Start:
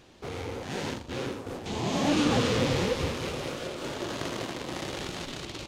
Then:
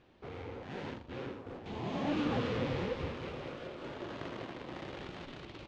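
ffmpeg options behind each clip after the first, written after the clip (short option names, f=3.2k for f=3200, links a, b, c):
-af "lowpass=2.8k,volume=-8dB"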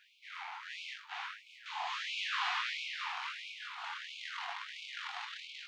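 -af "flanger=delay=19.5:depth=6.5:speed=0.86,afftfilt=real='re*gte(b*sr/1024,680*pow(2200/680,0.5+0.5*sin(2*PI*1.5*pts/sr)))':imag='im*gte(b*sr/1024,680*pow(2200/680,0.5+0.5*sin(2*PI*1.5*pts/sr)))':win_size=1024:overlap=0.75,volume=11.5dB"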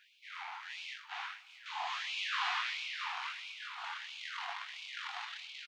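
-af "aecho=1:1:123|246|369:0.1|0.039|0.0152"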